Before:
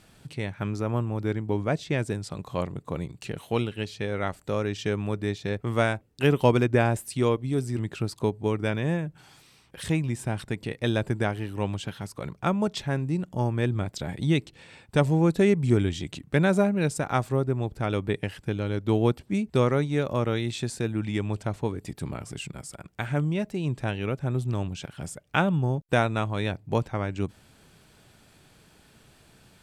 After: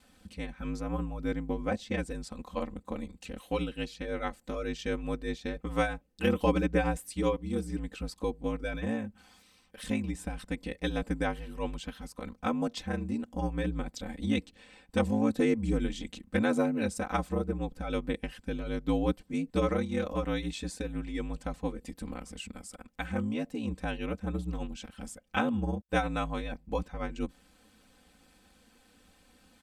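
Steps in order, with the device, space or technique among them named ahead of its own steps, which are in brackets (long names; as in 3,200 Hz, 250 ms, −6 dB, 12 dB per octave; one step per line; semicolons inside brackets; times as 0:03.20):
ring-modulated robot voice (ring modulation 54 Hz; comb filter 3.9 ms, depth 92%)
level −5 dB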